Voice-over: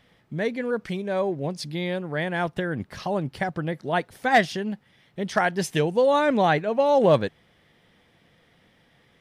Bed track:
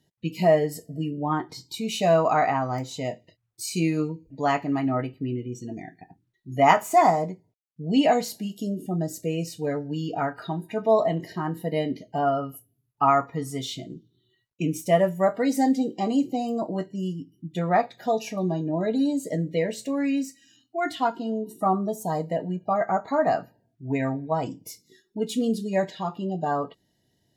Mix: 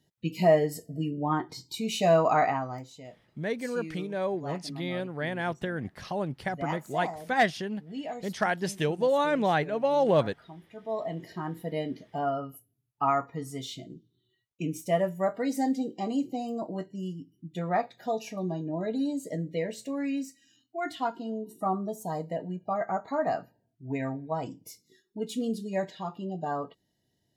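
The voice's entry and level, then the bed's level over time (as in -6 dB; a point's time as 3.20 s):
3.05 s, -5.0 dB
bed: 2.43 s -2 dB
3.08 s -17 dB
10.74 s -17 dB
11.28 s -6 dB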